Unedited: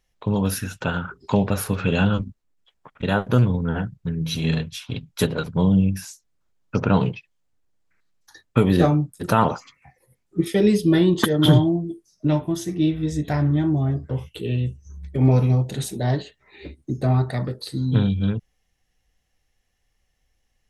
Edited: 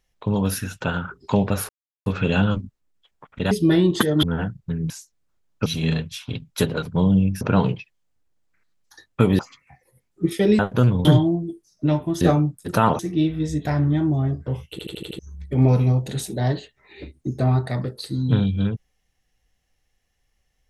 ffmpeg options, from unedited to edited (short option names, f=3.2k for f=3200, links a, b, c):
-filter_complex "[0:a]asplit=18[a][b][c][d][e][f][g][h][i][j][k][l][m][n][o][p][q][r];[a]atrim=end=1.69,asetpts=PTS-STARTPTS,afade=t=out:st=1.686:d=0.004:c=hsin,apad=pad_dur=0.37[s];[b]atrim=start=1.69:end=3.142,asetpts=PTS-STARTPTS,afade=t=in:d=0.004:c=hsin[t];[c]atrim=start=10.738:end=11.462[u];[d]atrim=start=3.598:end=4.272[v];[e]atrim=start=6.018:end=6.782[w];[f]atrim=start=4.268:end=6.022[x];[g]atrim=start=6.778:end=8.762[y];[h]atrim=start=9.538:end=10.742[z];[i]atrim=start=3.138:end=3.602[aa];[j]atrim=start=11.458:end=12.622[ab];[k]atrim=start=8.758:end=9.542[ac];[l]atrim=start=12.618:end=14.422[ad];[m]atrim=start=14.338:end=14.422[ae];[n]atrim=start=14.338:end=14.422[af];[o]atrim=start=14.338:end=14.422[ag];[p]atrim=start=14.338:end=14.422[ah];[q]atrim=start=14.338:end=14.422[ai];[r]atrim=start=14.818[aj];[s][t]concat=n=2:v=0:a=1[ak];[ak][u]acrossfade=d=0.004:c1=hsin:c2=hsin[al];[al][v]acrossfade=d=0.004:c1=hsin:c2=hsin[am];[am][w]acrossfade=d=0.004:c1=hsin:c2=hsin[an];[an][x]acrossfade=d=0.004:c1=hsin:c2=hsin[ao];[ao][y]acrossfade=d=0.004:c1=hsin:c2=hsin[ap];[ap][z]acrossfade=d=0.004:c1=hsin:c2=hsin[aq];[aq][aa]acrossfade=d=0.004:c1=hsin:c2=hsin[ar];[ar][ab]acrossfade=d=0.004:c1=hsin:c2=hsin[as];[as][ac]acrossfade=d=0.004:c1=hsin:c2=hsin[at];[at][ad]acrossfade=d=0.004:c1=hsin:c2=hsin[au];[au][ae]acrossfade=d=0.004:c1=hsin:c2=hsin[av];[av][af]acrossfade=d=0.004:c1=hsin:c2=hsin[aw];[aw][ag]acrossfade=d=0.004:c1=hsin:c2=hsin[ax];[ax][ah]acrossfade=d=0.004:c1=hsin:c2=hsin[ay];[ay][ai]acrossfade=d=0.004:c1=hsin:c2=hsin[az];[az][aj]acrossfade=d=0.004:c1=hsin:c2=hsin"